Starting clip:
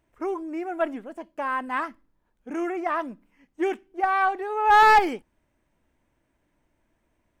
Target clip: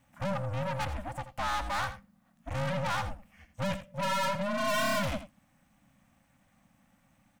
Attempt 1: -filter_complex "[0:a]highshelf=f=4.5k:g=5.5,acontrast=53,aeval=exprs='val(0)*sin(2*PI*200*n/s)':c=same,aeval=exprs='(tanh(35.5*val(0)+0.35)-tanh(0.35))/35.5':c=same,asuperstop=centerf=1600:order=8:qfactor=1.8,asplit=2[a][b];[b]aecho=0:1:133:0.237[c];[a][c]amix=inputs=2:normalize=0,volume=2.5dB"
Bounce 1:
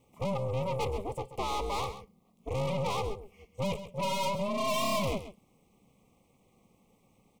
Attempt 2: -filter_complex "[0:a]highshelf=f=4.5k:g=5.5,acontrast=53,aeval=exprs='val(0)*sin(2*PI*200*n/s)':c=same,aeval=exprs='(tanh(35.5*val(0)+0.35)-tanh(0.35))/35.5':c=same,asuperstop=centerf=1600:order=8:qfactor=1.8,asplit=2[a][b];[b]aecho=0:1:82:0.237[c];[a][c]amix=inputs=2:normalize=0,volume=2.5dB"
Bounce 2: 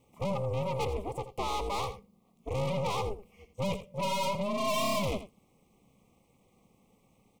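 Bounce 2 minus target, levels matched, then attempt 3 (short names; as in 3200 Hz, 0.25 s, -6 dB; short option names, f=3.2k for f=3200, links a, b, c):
2000 Hz band -6.5 dB
-filter_complex "[0:a]highshelf=f=4.5k:g=5.5,acontrast=53,aeval=exprs='val(0)*sin(2*PI*200*n/s)':c=same,aeval=exprs='(tanh(35.5*val(0)+0.35)-tanh(0.35))/35.5':c=same,asuperstop=centerf=410:order=8:qfactor=1.8,asplit=2[a][b];[b]aecho=0:1:82:0.237[c];[a][c]amix=inputs=2:normalize=0,volume=2.5dB"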